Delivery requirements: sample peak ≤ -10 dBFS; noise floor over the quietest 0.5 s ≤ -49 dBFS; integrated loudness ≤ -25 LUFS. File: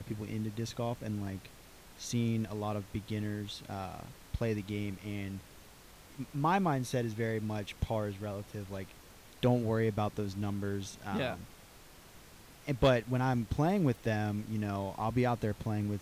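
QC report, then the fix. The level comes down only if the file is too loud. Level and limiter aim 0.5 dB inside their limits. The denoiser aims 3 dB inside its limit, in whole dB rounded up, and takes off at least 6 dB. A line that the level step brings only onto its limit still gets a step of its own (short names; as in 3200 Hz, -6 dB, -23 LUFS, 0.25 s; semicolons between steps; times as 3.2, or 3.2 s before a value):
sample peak -17.5 dBFS: OK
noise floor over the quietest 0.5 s -55 dBFS: OK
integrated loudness -34.5 LUFS: OK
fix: none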